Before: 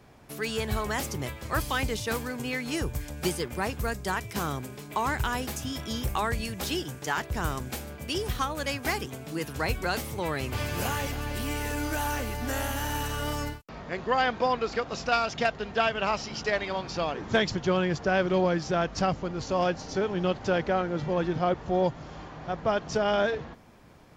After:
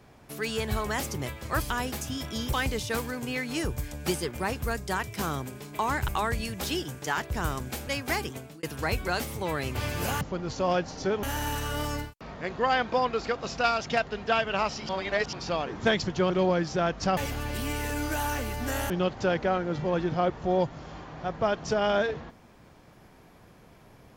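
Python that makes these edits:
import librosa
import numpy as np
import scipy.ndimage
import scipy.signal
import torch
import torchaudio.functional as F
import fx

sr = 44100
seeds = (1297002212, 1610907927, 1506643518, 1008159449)

y = fx.edit(x, sr, fx.move(start_s=5.25, length_s=0.83, to_s=1.7),
    fx.cut(start_s=7.87, length_s=0.77),
    fx.fade_out_span(start_s=9.14, length_s=0.26),
    fx.swap(start_s=10.98, length_s=1.73, other_s=19.12, other_length_s=1.02),
    fx.reverse_span(start_s=16.37, length_s=0.44),
    fx.cut(start_s=17.78, length_s=0.47), tone=tone)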